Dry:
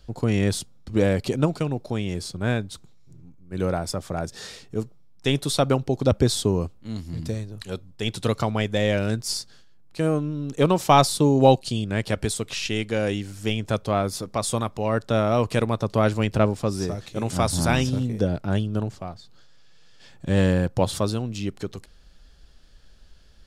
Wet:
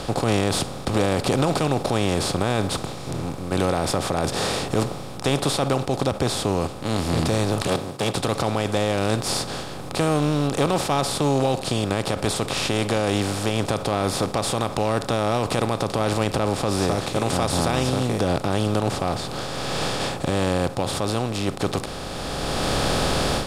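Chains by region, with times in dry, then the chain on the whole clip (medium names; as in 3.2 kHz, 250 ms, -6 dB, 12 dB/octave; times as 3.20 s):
7.67–8.15 s: comb filter that takes the minimum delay 1.8 ms + high-pass 130 Hz 24 dB/octave + peaking EQ 1.2 kHz -4.5 dB 2.3 oct
whole clip: spectral levelling over time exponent 0.4; level rider; peak limiter -7 dBFS; trim -3.5 dB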